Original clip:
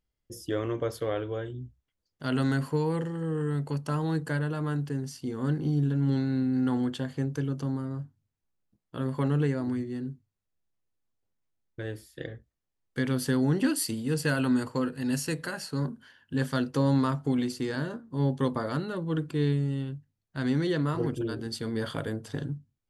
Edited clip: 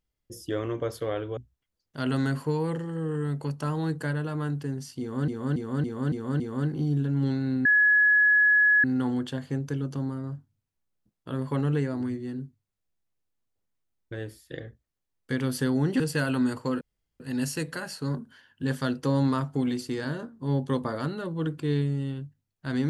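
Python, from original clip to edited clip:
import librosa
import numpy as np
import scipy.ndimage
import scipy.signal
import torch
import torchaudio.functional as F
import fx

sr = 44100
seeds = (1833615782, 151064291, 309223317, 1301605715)

y = fx.edit(x, sr, fx.cut(start_s=1.37, length_s=0.26),
    fx.repeat(start_s=5.26, length_s=0.28, count=6),
    fx.insert_tone(at_s=6.51, length_s=1.19, hz=1690.0, db=-16.5),
    fx.cut(start_s=13.67, length_s=0.43),
    fx.insert_room_tone(at_s=14.91, length_s=0.39), tone=tone)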